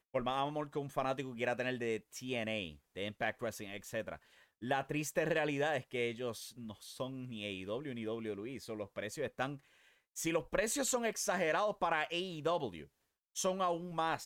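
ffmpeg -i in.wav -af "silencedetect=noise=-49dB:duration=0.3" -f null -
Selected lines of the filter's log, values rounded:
silence_start: 4.17
silence_end: 4.62 | silence_duration: 0.45
silence_start: 9.57
silence_end: 10.16 | silence_duration: 0.59
silence_start: 12.85
silence_end: 13.36 | silence_duration: 0.51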